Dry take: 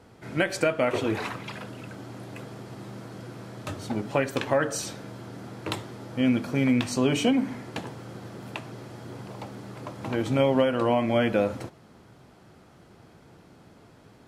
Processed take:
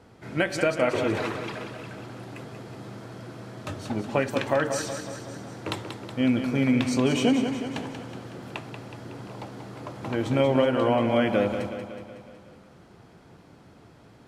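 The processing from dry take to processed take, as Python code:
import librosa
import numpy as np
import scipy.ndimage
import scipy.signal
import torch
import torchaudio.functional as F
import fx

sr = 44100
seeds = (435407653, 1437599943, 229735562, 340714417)

p1 = fx.high_shelf(x, sr, hz=10000.0, db=-6.5)
y = p1 + fx.echo_feedback(p1, sr, ms=185, feedback_pct=58, wet_db=-8.0, dry=0)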